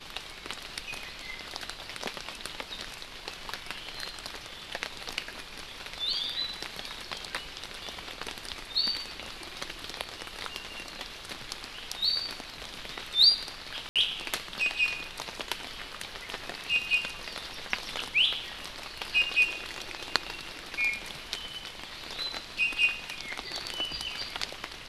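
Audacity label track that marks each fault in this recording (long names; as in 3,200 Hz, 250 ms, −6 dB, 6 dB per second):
13.890000	13.960000	drop-out 67 ms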